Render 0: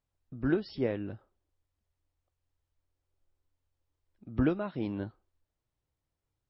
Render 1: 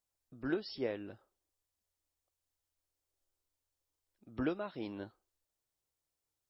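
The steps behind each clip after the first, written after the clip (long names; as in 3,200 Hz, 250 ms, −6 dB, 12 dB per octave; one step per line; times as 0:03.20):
bass and treble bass −10 dB, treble +10 dB
level −4 dB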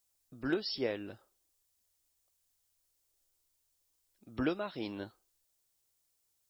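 high-shelf EQ 3,400 Hz +10.5 dB
level +2 dB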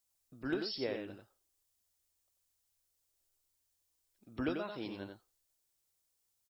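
single-tap delay 91 ms −6 dB
level −3.5 dB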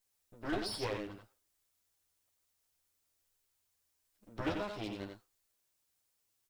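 lower of the sound and its delayed copy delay 9.8 ms
level +2 dB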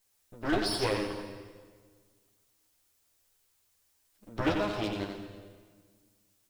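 convolution reverb RT60 1.6 s, pre-delay 109 ms, DRR 8.5 dB
level +7.5 dB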